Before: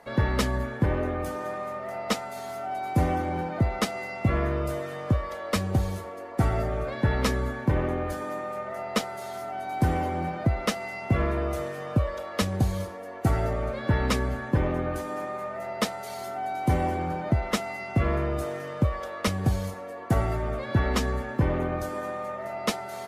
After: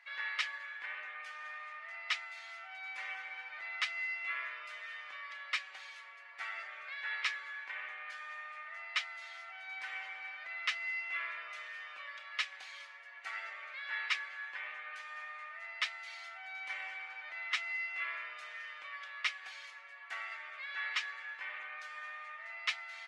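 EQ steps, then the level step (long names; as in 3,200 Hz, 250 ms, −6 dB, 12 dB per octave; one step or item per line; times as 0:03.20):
four-pole ladder high-pass 1,800 Hz, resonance 40%
head-to-tape spacing loss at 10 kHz 37 dB
high-shelf EQ 4,000 Hz +8.5 dB
+11.5 dB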